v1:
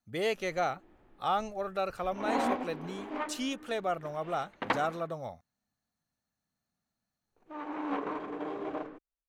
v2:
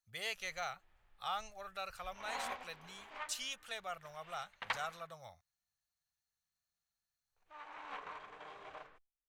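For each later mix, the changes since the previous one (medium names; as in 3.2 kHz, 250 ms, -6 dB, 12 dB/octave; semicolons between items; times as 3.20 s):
master: add amplifier tone stack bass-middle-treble 10-0-10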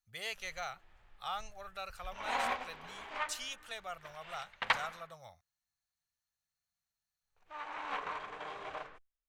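background +8.0 dB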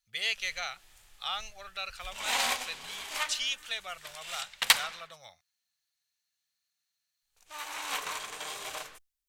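speech: add frequency weighting D; background: remove low-pass 1.6 kHz 12 dB/octave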